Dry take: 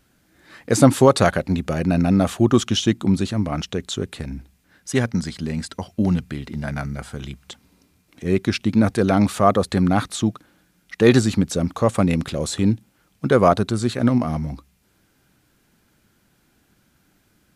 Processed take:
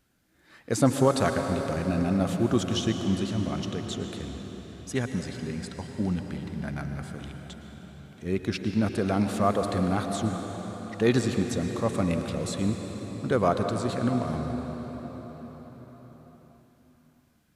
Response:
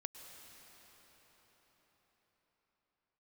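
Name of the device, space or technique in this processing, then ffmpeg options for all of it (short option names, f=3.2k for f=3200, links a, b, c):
cathedral: -filter_complex "[1:a]atrim=start_sample=2205[a];[0:a][a]afir=irnorm=-1:irlink=0,volume=-4.5dB"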